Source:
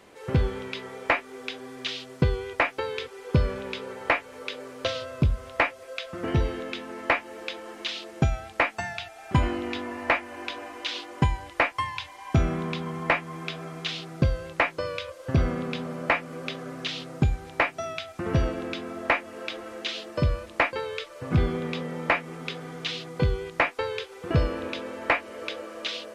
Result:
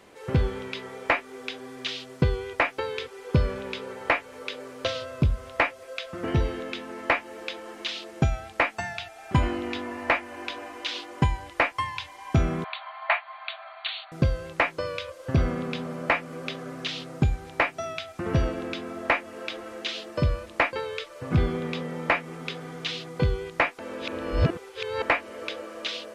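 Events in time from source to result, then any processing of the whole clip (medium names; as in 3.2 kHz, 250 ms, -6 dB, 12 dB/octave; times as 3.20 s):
12.64–14.12 s: brick-wall FIR band-pass 590–4600 Hz
23.79–25.02 s: reverse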